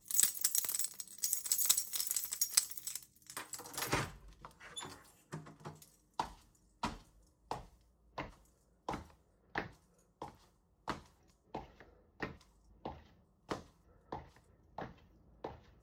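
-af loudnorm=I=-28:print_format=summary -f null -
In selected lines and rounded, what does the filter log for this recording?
Input Integrated:    -37.6 LUFS
Input True Peak:      -7.4 dBTP
Input LRA:            17.0 LU
Input Threshold:     -50.3 LUFS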